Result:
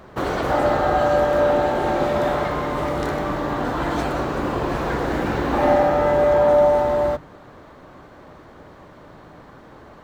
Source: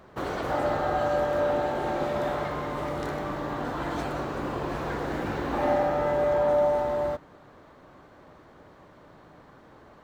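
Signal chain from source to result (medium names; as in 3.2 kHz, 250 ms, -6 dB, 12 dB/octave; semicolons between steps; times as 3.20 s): bass shelf 110 Hz +4 dB; hum notches 50/100/150 Hz; trim +7.5 dB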